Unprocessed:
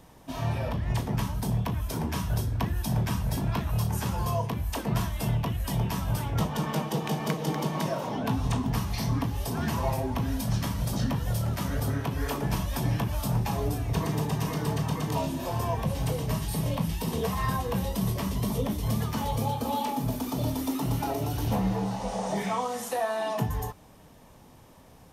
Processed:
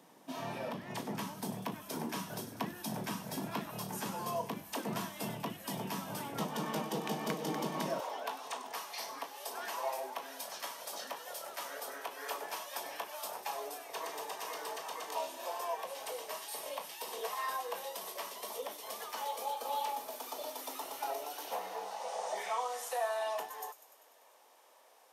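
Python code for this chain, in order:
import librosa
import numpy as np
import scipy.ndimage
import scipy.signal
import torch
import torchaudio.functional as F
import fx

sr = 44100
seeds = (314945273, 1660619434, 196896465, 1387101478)

y = fx.highpass(x, sr, hz=fx.steps((0.0, 200.0), (8.0, 500.0)), slope=24)
y = fx.echo_wet_highpass(y, sr, ms=98, feedback_pct=69, hz=5200.0, wet_db=-11)
y = y * 10.0 ** (-5.0 / 20.0)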